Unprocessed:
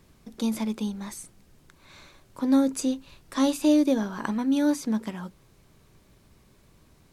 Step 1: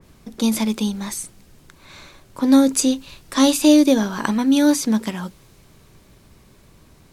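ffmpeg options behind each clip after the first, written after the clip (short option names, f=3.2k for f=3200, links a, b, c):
-af "adynamicequalizer=threshold=0.00501:dfrequency=2200:dqfactor=0.7:tfrequency=2200:tqfactor=0.7:attack=5:release=100:ratio=0.375:range=3:mode=boostabove:tftype=highshelf,volume=7.5dB"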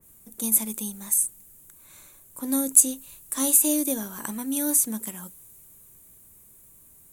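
-af "aexciter=amount=14.4:drive=6.4:freq=7.4k,volume=-13.5dB"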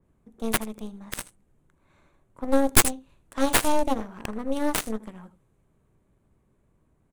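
-af "adynamicsmooth=sensitivity=1.5:basefreq=1.7k,aecho=1:1:80:0.188,aeval=exprs='0.531*(cos(1*acos(clip(val(0)/0.531,-1,1)))-cos(1*PI/2))+0.266*(cos(8*acos(clip(val(0)/0.531,-1,1)))-cos(8*PI/2))':c=same,volume=-1.5dB"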